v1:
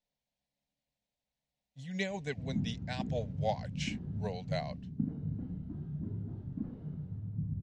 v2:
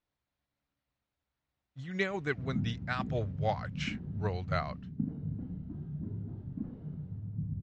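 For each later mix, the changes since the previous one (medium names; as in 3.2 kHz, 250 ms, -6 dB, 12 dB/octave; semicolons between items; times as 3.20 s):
speech: remove static phaser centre 340 Hz, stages 6; master: add distance through air 78 m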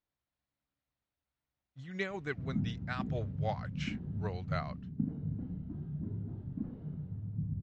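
speech -4.5 dB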